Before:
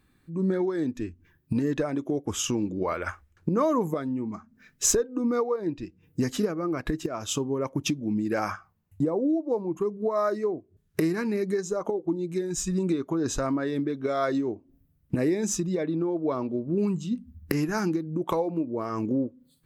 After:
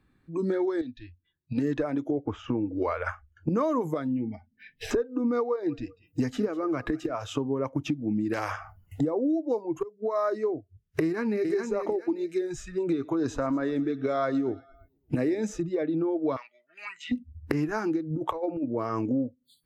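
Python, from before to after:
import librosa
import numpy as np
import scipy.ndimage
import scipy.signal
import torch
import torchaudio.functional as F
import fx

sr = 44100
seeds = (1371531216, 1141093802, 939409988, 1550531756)

y = fx.ladder_lowpass(x, sr, hz=4300.0, resonance_pct=70, at=(0.81, 1.58))
y = fx.lowpass(y, sr, hz=1500.0, slope=12, at=(2.11, 2.76))
y = fx.fixed_phaser(y, sr, hz=3000.0, stages=4, at=(4.07, 4.91))
y = fx.echo_feedback(y, sr, ms=193, feedback_pct=25, wet_db=-20.5, at=(5.43, 7.27))
y = fx.spectral_comp(y, sr, ratio=2.0, at=(8.33, 9.01))
y = fx.echo_throw(y, sr, start_s=11.02, length_s=0.48, ms=420, feedback_pct=25, wet_db=-5.5)
y = fx.echo_feedback(y, sr, ms=114, feedback_pct=58, wet_db=-21.0, at=(12.78, 15.62))
y = fx.highpass_res(y, sr, hz=1900.0, q=5.8, at=(16.36, 17.12))
y = fx.over_compress(y, sr, threshold_db=-29.0, ratio=-0.5, at=(18.1, 18.66))
y = fx.edit(y, sr, fx.fade_in_from(start_s=9.83, length_s=0.43, floor_db=-20.0), tone=tone)
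y = fx.noise_reduce_blind(y, sr, reduce_db=22)
y = fx.lowpass(y, sr, hz=2400.0, slope=6)
y = fx.band_squash(y, sr, depth_pct=70)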